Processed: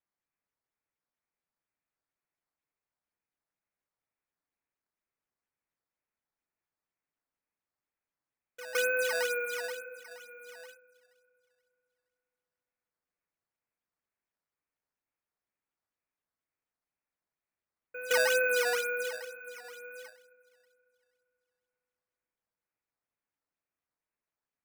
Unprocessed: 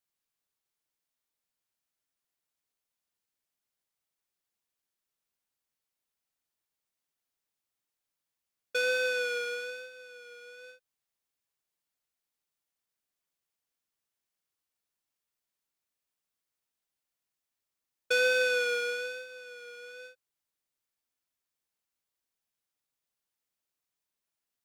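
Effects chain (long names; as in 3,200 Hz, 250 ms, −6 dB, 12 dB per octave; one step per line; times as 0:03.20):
Butterworth low-pass 2,600 Hz 96 dB per octave
echo ahead of the sound 163 ms −15 dB
feedback delay network reverb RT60 3 s, high-frequency decay 0.7×, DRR 14.5 dB
sample-and-hold swept by an LFO 8×, swing 160% 2.1 Hz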